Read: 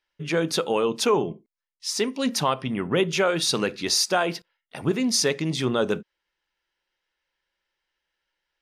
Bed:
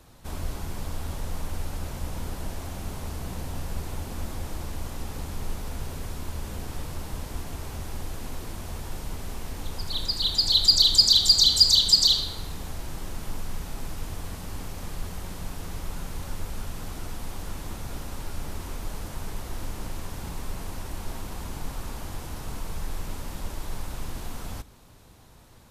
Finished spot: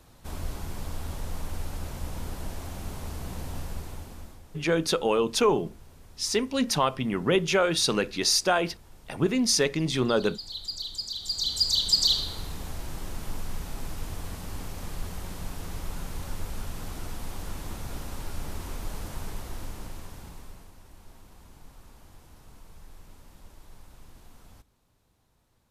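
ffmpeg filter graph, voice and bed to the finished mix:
-filter_complex "[0:a]adelay=4350,volume=-1dB[a];[1:a]volume=14dB,afade=t=out:st=3.58:d=0.84:silence=0.177828,afade=t=in:st=11.18:d=1.18:silence=0.158489,afade=t=out:st=19.16:d=1.56:silence=0.16788[b];[a][b]amix=inputs=2:normalize=0"

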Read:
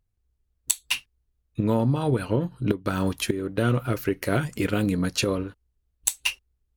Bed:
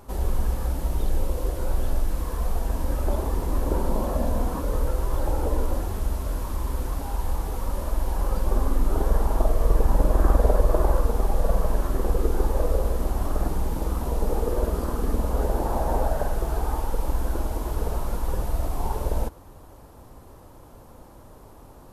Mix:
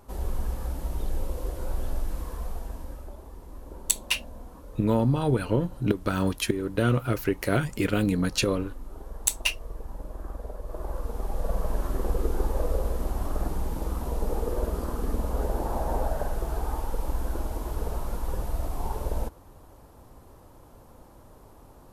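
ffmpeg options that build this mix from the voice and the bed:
-filter_complex "[0:a]adelay=3200,volume=-0.5dB[a];[1:a]volume=9dB,afade=t=out:st=2.16:d=0.97:silence=0.223872,afade=t=in:st=10.62:d=1.26:silence=0.188365[b];[a][b]amix=inputs=2:normalize=0"

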